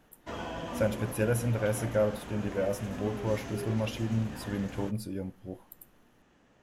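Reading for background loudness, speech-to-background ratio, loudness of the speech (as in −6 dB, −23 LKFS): −40.0 LKFS, 7.5 dB, −32.5 LKFS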